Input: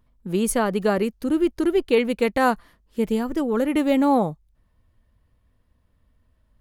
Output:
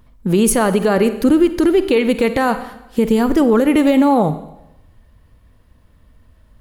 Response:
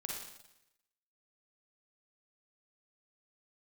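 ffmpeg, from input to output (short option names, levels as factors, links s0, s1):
-filter_complex "[0:a]acompressor=threshold=0.0891:ratio=6,asplit=2[s0][s1];[1:a]atrim=start_sample=2205[s2];[s1][s2]afir=irnorm=-1:irlink=0,volume=0.376[s3];[s0][s3]amix=inputs=2:normalize=0,alimiter=level_in=5.96:limit=0.891:release=50:level=0:latency=1,volume=0.631"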